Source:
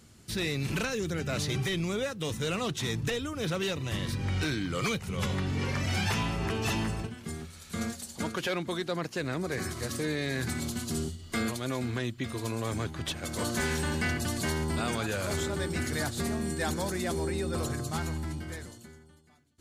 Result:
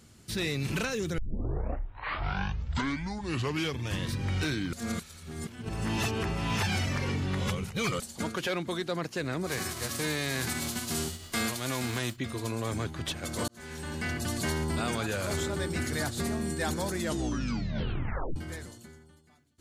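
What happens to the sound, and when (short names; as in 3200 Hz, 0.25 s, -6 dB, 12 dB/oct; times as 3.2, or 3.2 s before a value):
1.18 tape start 2.93 s
4.73–8 reverse
9.46–12.15 spectral whitening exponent 0.6
13.48–14.35 fade in
16.96 tape stop 1.40 s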